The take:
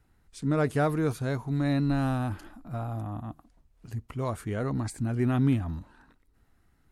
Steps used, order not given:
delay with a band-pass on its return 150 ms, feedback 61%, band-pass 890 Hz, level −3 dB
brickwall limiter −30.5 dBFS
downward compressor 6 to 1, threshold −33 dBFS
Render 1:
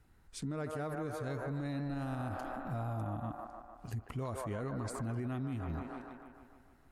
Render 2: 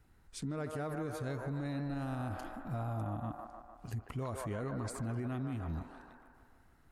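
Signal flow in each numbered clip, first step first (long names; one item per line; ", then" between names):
delay with a band-pass on its return, then downward compressor, then brickwall limiter
downward compressor, then delay with a band-pass on its return, then brickwall limiter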